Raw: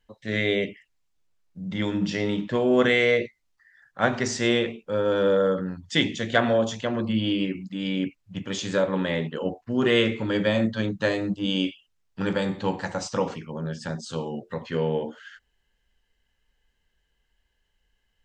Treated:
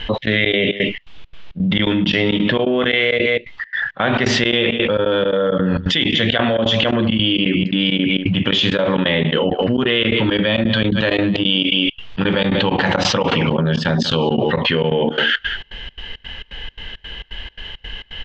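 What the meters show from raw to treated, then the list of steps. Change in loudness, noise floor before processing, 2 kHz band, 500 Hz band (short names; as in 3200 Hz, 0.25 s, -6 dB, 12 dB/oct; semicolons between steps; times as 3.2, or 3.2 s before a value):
+8.5 dB, -73 dBFS, +10.0 dB, +6.0 dB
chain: on a send: echo 0.188 s -20 dB; on the sum: vocal rider 0.5 s; step gate "xx.xx.xx." 169 bpm -24 dB; ladder low-pass 3600 Hz, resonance 55%; fast leveller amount 100%; gain +8 dB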